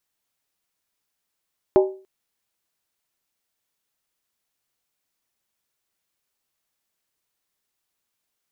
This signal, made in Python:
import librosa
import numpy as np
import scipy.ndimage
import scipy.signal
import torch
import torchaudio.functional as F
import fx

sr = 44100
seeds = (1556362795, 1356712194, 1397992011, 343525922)

y = fx.strike_skin(sr, length_s=0.29, level_db=-9, hz=382.0, decay_s=0.39, tilt_db=6.5, modes=5)